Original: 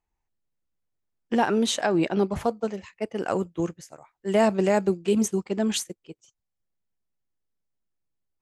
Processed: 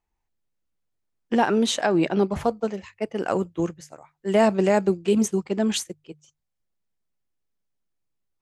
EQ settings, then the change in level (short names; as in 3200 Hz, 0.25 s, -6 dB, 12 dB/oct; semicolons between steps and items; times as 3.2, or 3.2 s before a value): high shelf 9800 Hz -5.5 dB; notches 50/100/150 Hz; +2.0 dB